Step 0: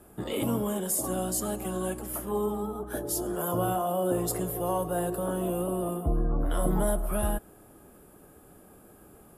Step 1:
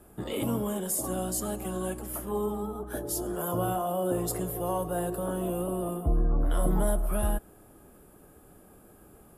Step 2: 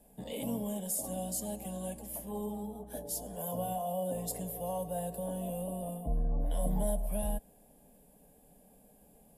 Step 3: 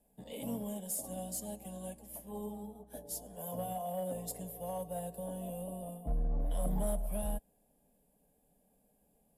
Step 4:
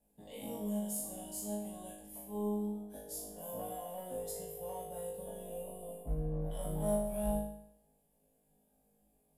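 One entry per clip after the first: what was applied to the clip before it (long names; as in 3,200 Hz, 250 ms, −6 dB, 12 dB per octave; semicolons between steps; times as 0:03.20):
low-shelf EQ 65 Hz +5.5 dB; level −1.5 dB
phaser with its sweep stopped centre 350 Hz, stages 6; level −4 dB
in parallel at −3.5 dB: hard clipping −30 dBFS, distortion −13 dB; on the sum: expander for the loud parts 1.5 to 1, over −46 dBFS; level −4.5 dB
tuned comb filter 52 Hz, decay 0.67 s, harmonics all, mix 100%; level +9 dB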